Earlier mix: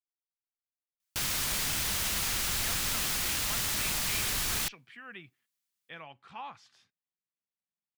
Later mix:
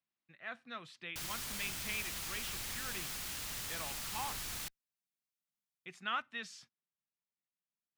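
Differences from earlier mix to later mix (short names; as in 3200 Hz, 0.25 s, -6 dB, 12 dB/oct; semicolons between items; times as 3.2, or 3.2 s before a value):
speech: entry -2.20 s; background -11.0 dB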